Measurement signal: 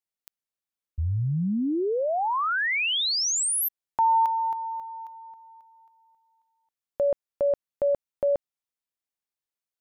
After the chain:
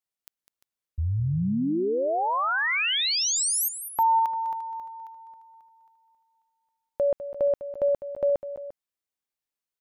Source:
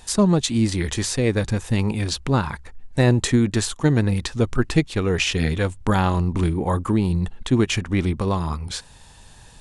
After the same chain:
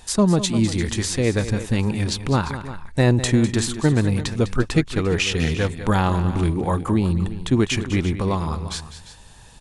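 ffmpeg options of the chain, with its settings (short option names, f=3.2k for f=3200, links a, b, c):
-af "aecho=1:1:202|347:0.237|0.178"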